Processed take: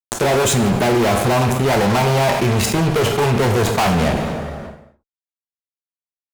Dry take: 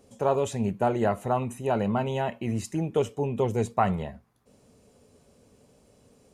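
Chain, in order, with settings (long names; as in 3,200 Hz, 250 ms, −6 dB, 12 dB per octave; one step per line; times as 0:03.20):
0:01.41–0:03.94: octave-band graphic EQ 250/1,000/8,000 Hz −7/+6/−10 dB
fuzz pedal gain 42 dB, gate −42 dBFS
dense smooth reverb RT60 0.73 s, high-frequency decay 0.85×, DRR 6 dB
envelope flattener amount 70%
level −3.5 dB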